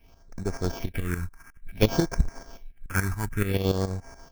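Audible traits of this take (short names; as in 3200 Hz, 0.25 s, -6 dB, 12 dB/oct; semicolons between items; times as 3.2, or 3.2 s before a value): a buzz of ramps at a fixed pitch in blocks of 8 samples; tremolo saw up 7 Hz, depth 75%; aliases and images of a low sample rate 3900 Hz, jitter 0%; phasing stages 4, 0.56 Hz, lowest notch 520–3100 Hz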